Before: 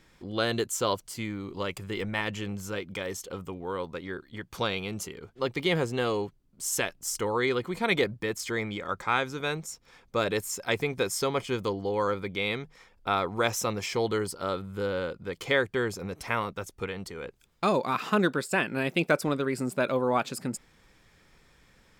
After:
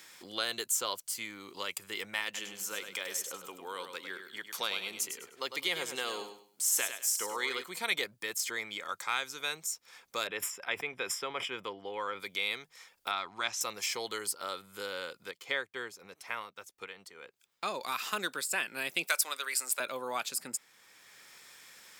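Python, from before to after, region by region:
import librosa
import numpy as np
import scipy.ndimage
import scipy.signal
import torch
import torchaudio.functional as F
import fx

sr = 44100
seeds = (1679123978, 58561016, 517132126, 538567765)

y = fx.chain(x, sr, fx.highpass(hz=160.0, slope=12),
    fx.echo_feedback(ms=101, feedback_pct=25, wet_db=-8.5), at=(2.24, 7.64))
y = fx.chain(y, sr, fx.savgol(points=25),
    fx.sustainer(db_per_s=130.0), at=(10.27, 12.2))
y = fx.chain(y, sr, fx.lowpass(hz=4400.0, slope=12),
    fx.peak_eq(hz=480.0, db=-13.0, octaves=0.35), at=(13.11, 13.61))
y = fx.chain(y, sr, fx.peak_eq(hz=13000.0, db=-12.5, octaves=2.2),
    fx.upward_expand(threshold_db=-41.0, expansion=1.5), at=(15.31, 17.81))
y = fx.chain(y, sr, fx.highpass(hz=670.0, slope=12),
    fx.high_shelf(hz=2000.0, db=10.0), at=(19.07, 19.8))
y = fx.highpass(y, sr, hz=1500.0, slope=6)
y = fx.high_shelf(y, sr, hz=6000.0, db=12.0)
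y = fx.band_squash(y, sr, depth_pct=40)
y = y * 10.0 ** (-2.5 / 20.0)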